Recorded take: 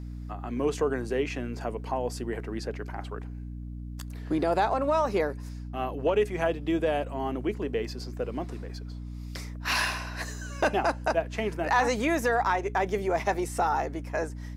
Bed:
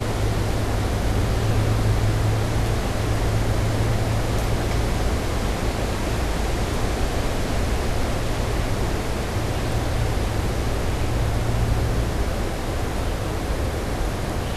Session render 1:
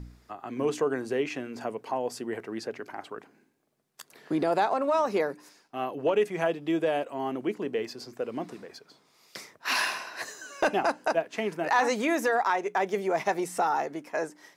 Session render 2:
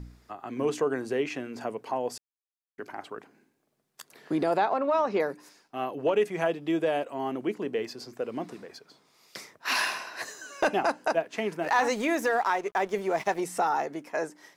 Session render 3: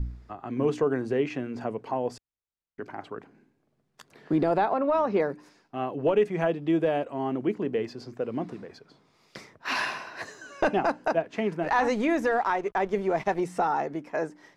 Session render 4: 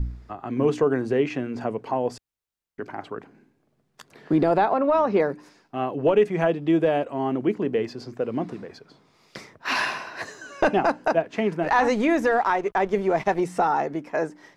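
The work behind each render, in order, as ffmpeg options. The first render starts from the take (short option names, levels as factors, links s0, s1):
-af "bandreject=f=60:t=h:w=4,bandreject=f=120:t=h:w=4,bandreject=f=180:t=h:w=4,bandreject=f=240:t=h:w=4,bandreject=f=300:t=h:w=4"
-filter_complex "[0:a]asettb=1/sr,asplit=3[s0][s1][s2];[s0]atrim=end=4.574[s3];[s1]atrim=start=4.57:end=5.2,asetpts=PTS-STARTPTS,afade=t=in:d=0.004:c=qsin,afade=t=out:st=0.626:d=0.004:c=qsin,lowpass=4100[s4];[s2]atrim=start=5.196[s5];[s3][s4]acrossfade=d=0.004:c1=hsin:c2=qsin[s6];[s6][s5]acrossfade=d=0.004:c1=qsin:c2=hsin,asettb=1/sr,asplit=3[s7][s8][s9];[s7]atrim=end=11.624[s10];[s8]atrim=start=11.62:end=13.41,asetpts=PTS-STARTPTS,afade=t=in:d=0.004:c=qsin,afade=t=out:st=1.786:d=0.004:c=qsin,aeval=exprs='sgn(val(0))*max(abs(val(0))-0.00398,0)':c=same[s11];[s9]atrim=start=13.406[s12];[s10][s11]acrossfade=d=0.004:c1=hsin:c2=qsin[s13];[s13][s12]acrossfade=d=0.004:c1=qsin:c2=hsin,asplit=3[s14][s15][s16];[s14]atrim=end=2.18,asetpts=PTS-STARTPTS,afade=t=out:st=2.176:d=0.004:c=hsin[s17];[s15]atrim=start=2.18:end=2.78,asetpts=PTS-STARTPTS,volume=0[s18];[s16]atrim=start=2.78,asetpts=PTS-STARTPTS,afade=t=in:d=0.004:c=hsin[s19];[s17][s18][s19]concat=n=3:v=0:a=1"
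-af "aemphasis=mode=reproduction:type=bsi"
-af "volume=1.58"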